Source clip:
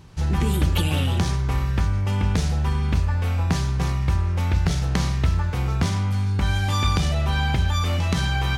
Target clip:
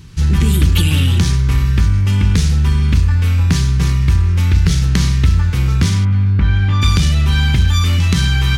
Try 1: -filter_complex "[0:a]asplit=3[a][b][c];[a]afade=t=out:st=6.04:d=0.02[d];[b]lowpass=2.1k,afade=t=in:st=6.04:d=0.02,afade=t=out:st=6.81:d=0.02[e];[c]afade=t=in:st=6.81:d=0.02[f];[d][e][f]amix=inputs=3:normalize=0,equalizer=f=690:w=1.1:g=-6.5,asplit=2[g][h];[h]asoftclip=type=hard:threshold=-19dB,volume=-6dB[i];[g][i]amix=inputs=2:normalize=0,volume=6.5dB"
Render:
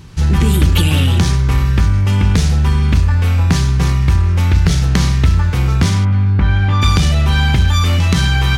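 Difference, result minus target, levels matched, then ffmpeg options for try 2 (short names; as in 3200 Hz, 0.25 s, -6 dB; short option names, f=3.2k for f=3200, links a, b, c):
500 Hz band +4.5 dB
-filter_complex "[0:a]asplit=3[a][b][c];[a]afade=t=out:st=6.04:d=0.02[d];[b]lowpass=2.1k,afade=t=in:st=6.04:d=0.02,afade=t=out:st=6.81:d=0.02[e];[c]afade=t=in:st=6.81:d=0.02[f];[d][e][f]amix=inputs=3:normalize=0,equalizer=f=690:w=1.1:g=-17.5,asplit=2[g][h];[h]asoftclip=type=hard:threshold=-19dB,volume=-6dB[i];[g][i]amix=inputs=2:normalize=0,volume=6.5dB"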